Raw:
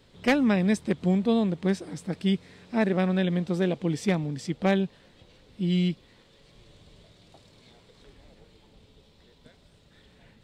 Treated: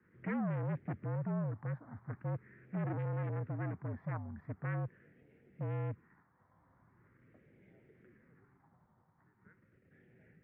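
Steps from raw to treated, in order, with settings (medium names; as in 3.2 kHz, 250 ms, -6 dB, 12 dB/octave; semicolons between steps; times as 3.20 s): phase shifter stages 4, 0.42 Hz, lowest notch 450–1100 Hz; in parallel at 0 dB: level held to a coarse grid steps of 15 dB; on the sum: overload inside the chain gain 26 dB; mistuned SSB -54 Hz 180–2000 Hz; trim -7 dB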